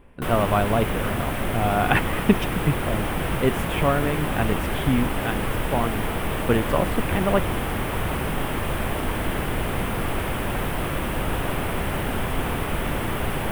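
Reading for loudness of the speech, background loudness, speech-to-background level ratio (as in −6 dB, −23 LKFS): −25.5 LKFS, −26.5 LKFS, 1.0 dB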